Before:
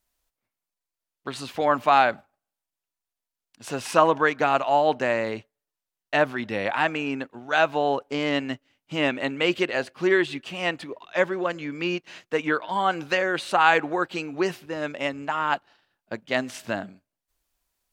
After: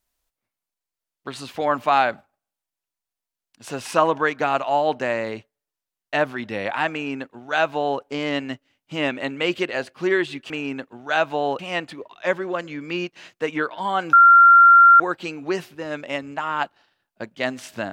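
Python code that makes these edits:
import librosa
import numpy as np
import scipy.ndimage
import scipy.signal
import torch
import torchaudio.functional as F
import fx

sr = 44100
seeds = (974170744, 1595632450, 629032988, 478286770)

y = fx.edit(x, sr, fx.duplicate(start_s=6.92, length_s=1.09, to_s=10.5),
    fx.bleep(start_s=13.04, length_s=0.87, hz=1380.0, db=-7.0), tone=tone)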